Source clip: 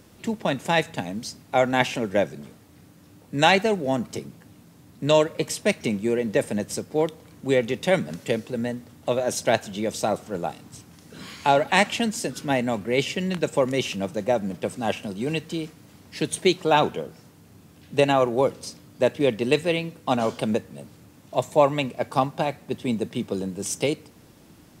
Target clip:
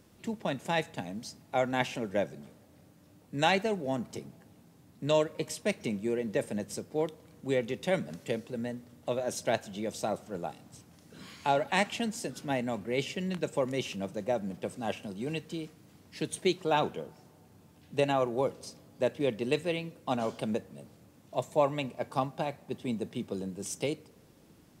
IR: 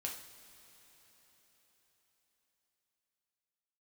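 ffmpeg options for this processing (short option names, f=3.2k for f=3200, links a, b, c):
-filter_complex "[0:a]asplit=2[a][b];[1:a]atrim=start_sample=2205,asetrate=66150,aresample=44100,lowpass=1.2k[c];[b][c]afir=irnorm=-1:irlink=0,volume=-11dB[d];[a][d]amix=inputs=2:normalize=0,volume=-9dB"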